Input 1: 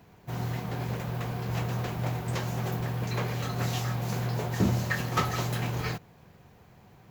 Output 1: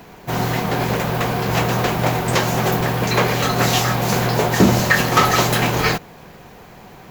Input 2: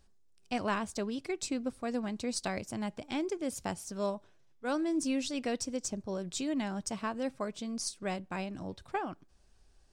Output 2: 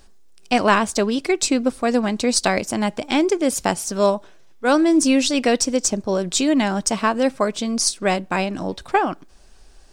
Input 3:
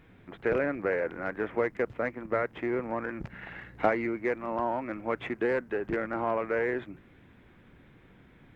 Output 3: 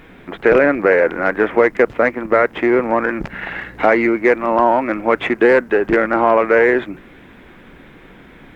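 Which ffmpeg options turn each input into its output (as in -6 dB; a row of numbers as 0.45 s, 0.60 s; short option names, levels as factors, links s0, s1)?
-af "equalizer=f=100:t=o:w=1.4:g=-11,alimiter=level_in=7.94:limit=0.891:release=50:level=0:latency=1,volume=0.891"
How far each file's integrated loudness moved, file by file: +13.0 LU, +16.0 LU, +16.0 LU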